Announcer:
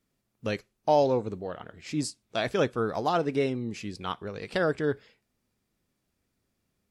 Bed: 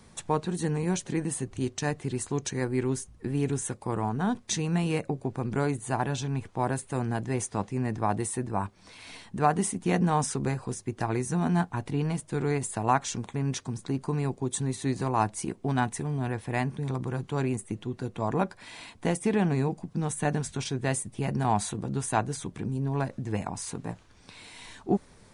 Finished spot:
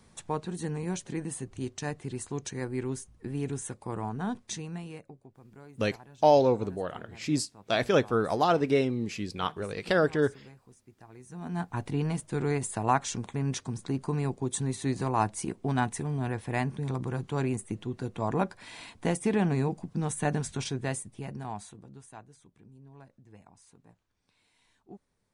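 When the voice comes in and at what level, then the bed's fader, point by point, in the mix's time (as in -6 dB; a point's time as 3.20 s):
5.35 s, +2.0 dB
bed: 4.41 s -5 dB
5.34 s -23 dB
11.12 s -23 dB
11.77 s -1 dB
20.67 s -1 dB
22.27 s -23 dB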